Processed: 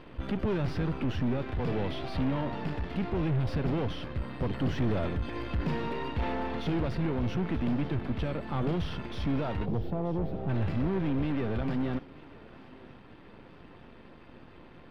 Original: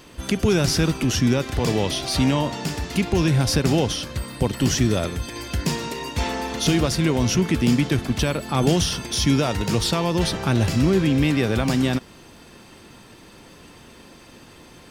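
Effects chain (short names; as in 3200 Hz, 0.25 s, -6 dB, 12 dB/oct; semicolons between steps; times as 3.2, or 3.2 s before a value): half-wave gain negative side -12 dB; vocal rider 2 s; spectral gain 9.65–10.49, 830–12000 Hz -20 dB; soft clip -23 dBFS, distortion -6 dB; air absorption 450 m; on a send: thinning echo 0.932 s, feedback 62%, high-pass 420 Hz, level -18.5 dB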